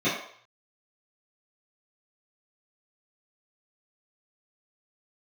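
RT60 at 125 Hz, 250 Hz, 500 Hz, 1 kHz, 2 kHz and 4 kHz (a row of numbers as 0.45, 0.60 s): 0.60, 0.40, 0.55, 0.60, 0.60, 0.55 s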